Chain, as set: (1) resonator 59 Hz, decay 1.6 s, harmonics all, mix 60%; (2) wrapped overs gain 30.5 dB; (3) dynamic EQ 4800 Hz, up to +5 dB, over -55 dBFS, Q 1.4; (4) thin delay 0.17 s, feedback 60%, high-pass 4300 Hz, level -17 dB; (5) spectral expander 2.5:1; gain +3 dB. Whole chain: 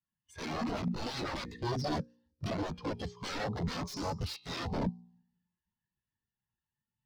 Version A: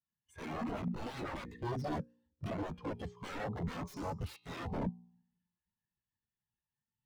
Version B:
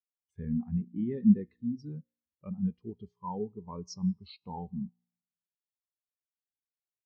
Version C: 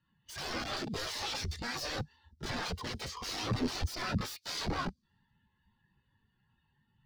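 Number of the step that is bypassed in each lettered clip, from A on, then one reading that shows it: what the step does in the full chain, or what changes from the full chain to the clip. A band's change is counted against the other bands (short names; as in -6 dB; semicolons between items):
3, 4 kHz band -8.0 dB; 2, crest factor change +6.5 dB; 1, 8 kHz band +7.5 dB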